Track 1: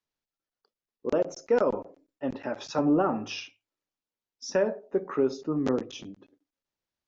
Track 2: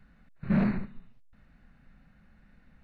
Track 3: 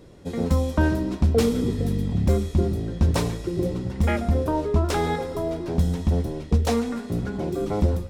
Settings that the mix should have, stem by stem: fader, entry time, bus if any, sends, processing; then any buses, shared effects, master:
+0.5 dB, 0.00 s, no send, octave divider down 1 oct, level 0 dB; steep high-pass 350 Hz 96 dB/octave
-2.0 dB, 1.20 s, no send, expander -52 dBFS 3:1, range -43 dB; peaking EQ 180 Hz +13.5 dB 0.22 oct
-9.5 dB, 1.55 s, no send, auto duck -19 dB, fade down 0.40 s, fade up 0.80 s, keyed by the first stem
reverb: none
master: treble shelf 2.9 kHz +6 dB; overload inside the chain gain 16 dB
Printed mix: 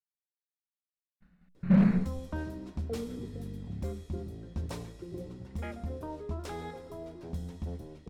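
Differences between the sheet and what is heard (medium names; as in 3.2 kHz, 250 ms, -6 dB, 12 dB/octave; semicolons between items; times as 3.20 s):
stem 1: muted; stem 3 -9.5 dB -> -16.0 dB; master: missing treble shelf 2.9 kHz +6 dB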